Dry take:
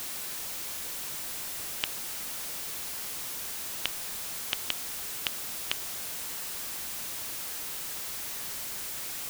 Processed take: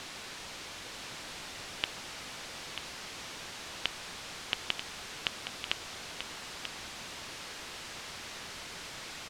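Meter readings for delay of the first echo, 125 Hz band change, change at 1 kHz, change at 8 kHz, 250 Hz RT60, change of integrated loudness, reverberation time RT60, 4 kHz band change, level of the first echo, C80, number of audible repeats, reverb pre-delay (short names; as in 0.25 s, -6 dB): 0.938 s, +0.5 dB, +0.5 dB, -10.0 dB, none, -6.5 dB, none, -1.0 dB, -9.0 dB, none, 1, none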